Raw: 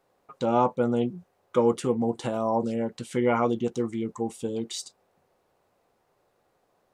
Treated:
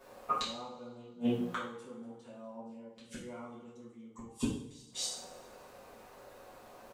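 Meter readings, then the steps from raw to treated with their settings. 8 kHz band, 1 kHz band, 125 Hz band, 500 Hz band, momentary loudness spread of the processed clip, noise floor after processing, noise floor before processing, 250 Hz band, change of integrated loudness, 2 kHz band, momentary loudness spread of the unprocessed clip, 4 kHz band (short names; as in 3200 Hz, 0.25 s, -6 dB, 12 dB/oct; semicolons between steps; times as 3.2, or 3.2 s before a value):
-2.0 dB, -12.0 dB, -12.5 dB, -18.0 dB, 19 LU, -57 dBFS, -71 dBFS, -11.0 dB, -12.5 dB, -8.0 dB, 9 LU, -1.0 dB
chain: on a send: echo 0.24 s -16.5 dB; on the sum: flipped gate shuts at -29 dBFS, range -39 dB; two-slope reverb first 0.53 s, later 1.7 s, from -19 dB, DRR -10 dB; gain +6 dB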